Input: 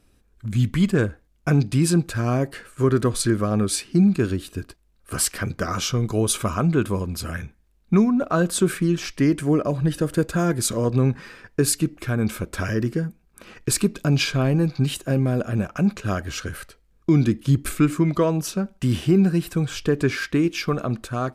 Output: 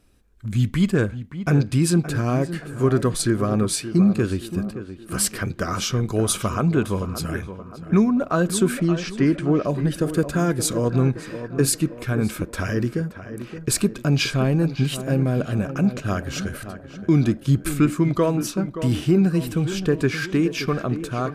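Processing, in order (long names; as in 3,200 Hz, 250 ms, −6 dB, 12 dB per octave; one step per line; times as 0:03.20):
0:08.79–0:09.63: low-pass filter 7,200 Hz → 3,800 Hz 12 dB per octave
tape delay 573 ms, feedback 55%, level −9.5 dB, low-pass 1,700 Hz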